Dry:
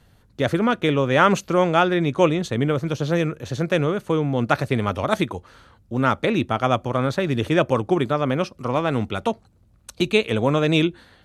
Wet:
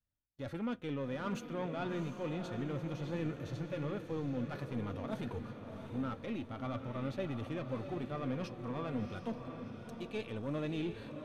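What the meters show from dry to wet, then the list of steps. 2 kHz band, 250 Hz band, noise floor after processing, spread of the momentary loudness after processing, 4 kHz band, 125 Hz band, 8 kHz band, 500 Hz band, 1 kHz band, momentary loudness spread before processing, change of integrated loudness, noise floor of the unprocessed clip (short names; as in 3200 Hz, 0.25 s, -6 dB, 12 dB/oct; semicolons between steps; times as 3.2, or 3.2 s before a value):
-22.0 dB, -15.5 dB, -50 dBFS, 5 LU, -22.0 dB, -16.0 dB, under -20 dB, -19.5 dB, -22.0 dB, 7 LU, -18.5 dB, -57 dBFS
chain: gate -43 dBFS, range -33 dB; reverse; compressor 5:1, threshold -31 dBFS, peak gain reduction 18 dB; reverse; low shelf 140 Hz +4.5 dB; soft clip -26.5 dBFS, distortion -15 dB; flange 0.29 Hz, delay 3.3 ms, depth 1.1 ms, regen +58%; bell 7600 Hz -4.5 dB 1.1 oct; harmonic-percussive split percussive -7 dB; on a send: diffused feedback echo 0.702 s, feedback 48%, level -7 dB; on the sum: gain +1.5 dB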